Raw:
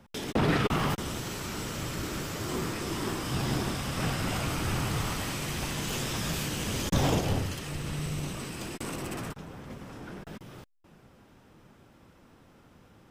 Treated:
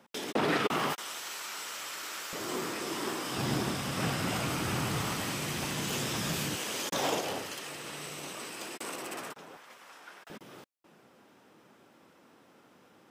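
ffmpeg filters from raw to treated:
-af "asetnsamples=n=441:p=0,asendcmd='0.93 highpass f 910;2.33 highpass f 300;3.38 highpass f 130;6.56 highpass f 420;9.57 highpass f 960;10.3 highpass f 260',highpass=290"

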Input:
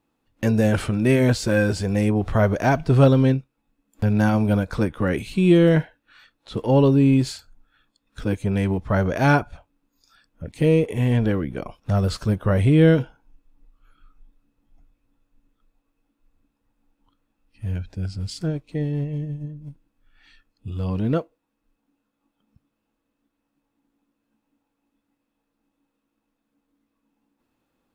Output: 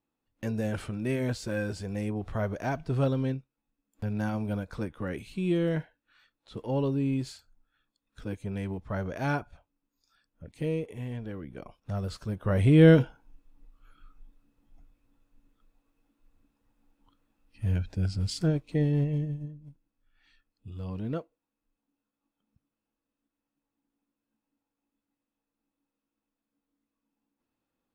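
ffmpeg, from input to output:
-af "volume=6dB,afade=t=out:st=10.58:d=0.66:silence=0.473151,afade=t=in:st=11.24:d=0.38:silence=0.473151,afade=t=in:st=12.32:d=0.65:silence=0.266073,afade=t=out:st=19.1:d=0.52:silence=0.298538"

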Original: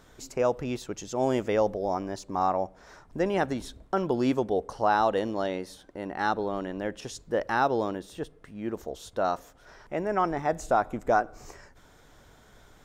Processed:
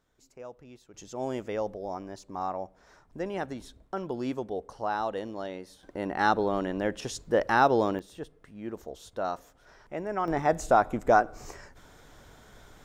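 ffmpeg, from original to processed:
-af "asetnsamples=n=441:p=0,asendcmd='0.94 volume volume -7dB;5.83 volume volume 3dB;7.99 volume volume -4.5dB;10.28 volume volume 2.5dB',volume=-18.5dB"

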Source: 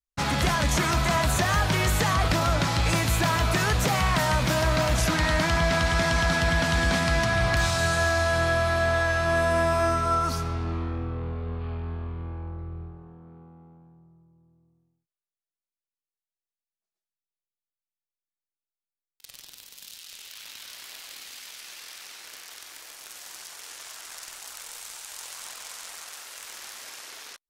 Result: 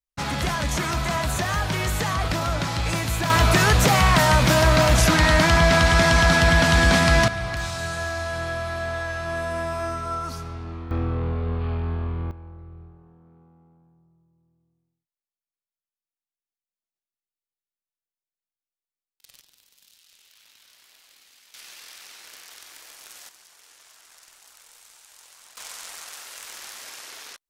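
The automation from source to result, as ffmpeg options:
-af "asetnsamples=n=441:p=0,asendcmd='3.3 volume volume 6.5dB;7.28 volume volume -5dB;10.91 volume volume 6dB;12.31 volume volume -6dB;19.41 volume volume -13dB;21.54 volume volume -1.5dB;23.29 volume volume -11dB;25.57 volume volume 1.5dB',volume=-1.5dB"

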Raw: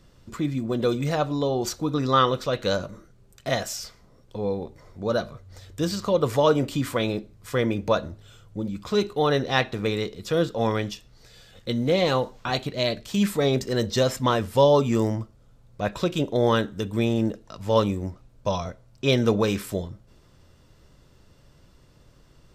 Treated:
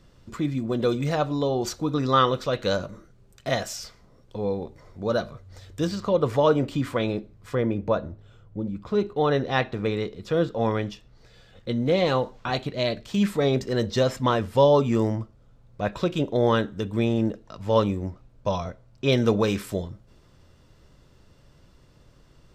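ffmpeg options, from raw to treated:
-af "asetnsamples=n=441:p=0,asendcmd='5.87 lowpass f 2700;7.55 lowpass f 1000;9.16 lowpass f 2200;11.86 lowpass f 3700;19.12 lowpass f 8000',lowpass=f=7.2k:p=1"

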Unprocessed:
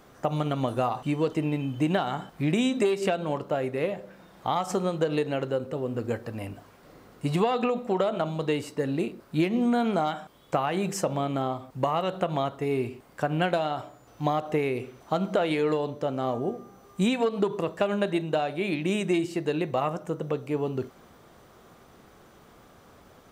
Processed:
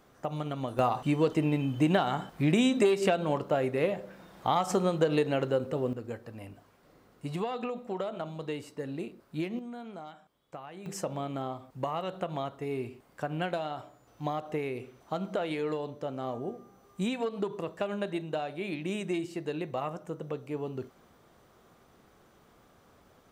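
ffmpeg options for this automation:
-af "asetnsamples=n=441:p=0,asendcmd='0.79 volume volume 0dB;5.93 volume volume -9dB;9.59 volume volume -18dB;10.86 volume volume -7dB',volume=-7dB"

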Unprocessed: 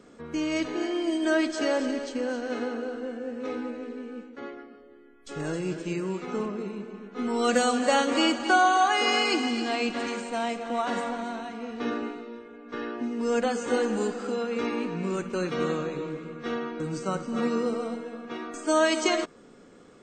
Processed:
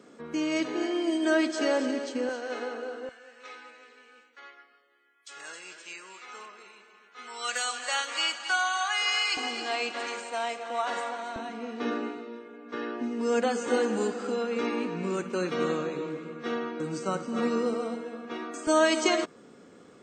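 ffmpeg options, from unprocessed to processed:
-af "asetnsamples=n=441:p=0,asendcmd='2.29 highpass f 450;3.09 highpass f 1400;9.37 highpass f 550;11.36 highpass f 180;18.67 highpass f 86',highpass=170"

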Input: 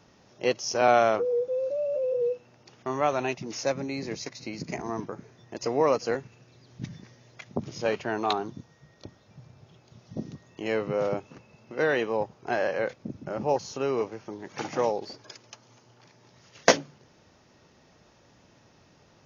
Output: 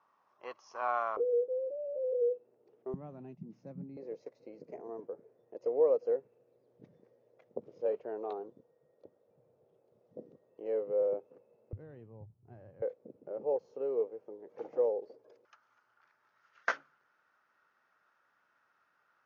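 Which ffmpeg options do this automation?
-af "asetnsamples=n=441:p=0,asendcmd='1.17 bandpass f 440;2.94 bandpass f 180;3.97 bandpass f 490;11.73 bandpass f 100;12.82 bandpass f 480;15.45 bandpass f 1400',bandpass=f=1.1k:t=q:w=5.6:csg=0"

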